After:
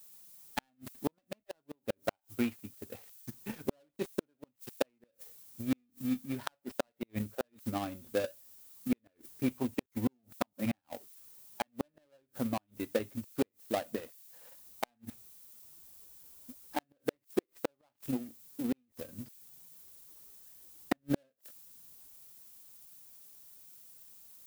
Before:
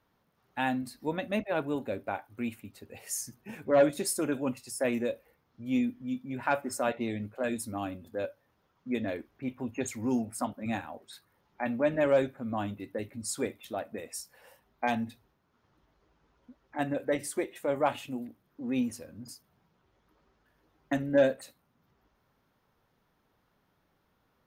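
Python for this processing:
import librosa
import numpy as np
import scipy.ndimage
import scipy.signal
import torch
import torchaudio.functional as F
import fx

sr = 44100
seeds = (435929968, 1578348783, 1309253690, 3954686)

y = fx.dead_time(x, sr, dead_ms=0.18)
y = fx.dmg_noise_colour(y, sr, seeds[0], colour='violet', level_db=-52.0)
y = fx.gate_flip(y, sr, shuts_db=-22.0, range_db=-39)
y = fx.transient(y, sr, attack_db=10, sustain_db=-2)
y = y * 10.0 ** (-3.5 / 20.0)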